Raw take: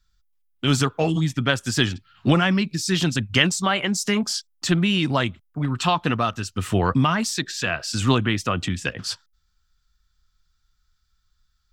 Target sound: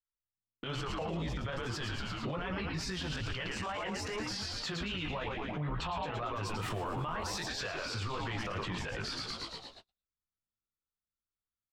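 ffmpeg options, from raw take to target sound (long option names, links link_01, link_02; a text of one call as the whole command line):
ffmpeg -i in.wav -filter_complex "[0:a]equalizer=frequency=125:width_type=o:width=1:gain=7,equalizer=frequency=250:width_type=o:width=1:gain=-6,equalizer=frequency=500:width_type=o:width=1:gain=11,equalizer=frequency=1000:width_type=o:width=1:gain=10,equalizer=frequency=2000:width_type=o:width=1:gain=5,equalizer=frequency=4000:width_type=o:width=1:gain=5,equalizer=frequency=8000:width_type=o:width=1:gain=-5,acompressor=threshold=-21dB:ratio=4,flanger=delay=16.5:depth=3.7:speed=2.4,asplit=9[link_01][link_02][link_03][link_04][link_05][link_06][link_07][link_08][link_09];[link_02]adelay=112,afreqshift=-110,volume=-6dB[link_10];[link_03]adelay=224,afreqshift=-220,volume=-10.4dB[link_11];[link_04]adelay=336,afreqshift=-330,volume=-14.9dB[link_12];[link_05]adelay=448,afreqshift=-440,volume=-19.3dB[link_13];[link_06]adelay=560,afreqshift=-550,volume=-23.7dB[link_14];[link_07]adelay=672,afreqshift=-660,volume=-28.2dB[link_15];[link_08]adelay=784,afreqshift=-770,volume=-32.6dB[link_16];[link_09]adelay=896,afreqshift=-880,volume=-37.1dB[link_17];[link_01][link_10][link_11][link_12][link_13][link_14][link_15][link_16][link_17]amix=inputs=9:normalize=0,alimiter=level_in=7.5dB:limit=-24dB:level=0:latency=1:release=85,volume=-7.5dB,asetnsamples=nb_out_samples=441:pad=0,asendcmd='6.12 highshelf g 4;7.46 highshelf g -7',highshelf=frequency=9800:gain=-8,agate=range=-38dB:threshold=-54dB:ratio=16:detection=peak,volume=3dB" out.wav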